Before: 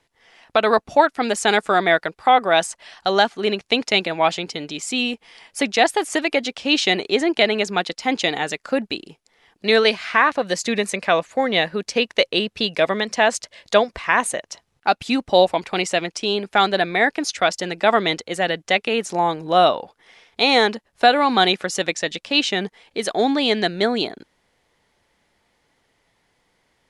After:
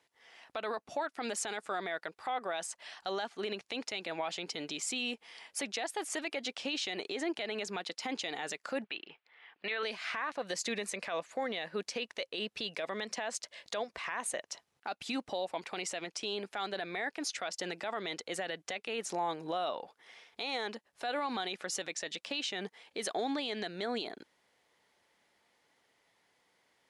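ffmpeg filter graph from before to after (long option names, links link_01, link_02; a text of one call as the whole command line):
ffmpeg -i in.wav -filter_complex "[0:a]asettb=1/sr,asplit=3[link_01][link_02][link_03];[link_01]atrim=end=8.844[link_04];[link_02]atrim=start=8.84:end=9.83,asetpts=PTS-STARTPTS,afade=type=in:duration=0.004:curve=qsin,afade=type=out:start_time=0.986:duration=0.004:curve=qsin,lowpass=frequency=2900:width=0.5412,lowpass=frequency=2900:width=1.3066,tiltshelf=frequency=660:gain=-9.5[link_05];[link_03]atrim=start=9.826[link_06];[link_04][link_05]acrossfade=duration=0.004:curve1=hsin:curve2=qsin[link_07];[link_07][link_06]acrossfade=duration=0.004:curve1=qsin:curve2=hsin,highpass=frequency=350:poles=1,acompressor=threshold=-26dB:ratio=2,alimiter=limit=-20dB:level=0:latency=1:release=39,volume=-5.5dB" out.wav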